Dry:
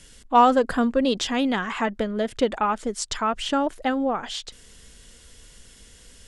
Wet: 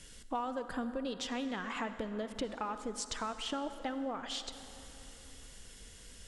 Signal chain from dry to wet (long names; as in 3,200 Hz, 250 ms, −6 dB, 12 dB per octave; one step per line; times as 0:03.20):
downward compressor 5 to 1, threshold −32 dBFS, peak gain reduction 18.5 dB
on a send: convolution reverb RT60 3.5 s, pre-delay 43 ms, DRR 10 dB
on the sum: level −4 dB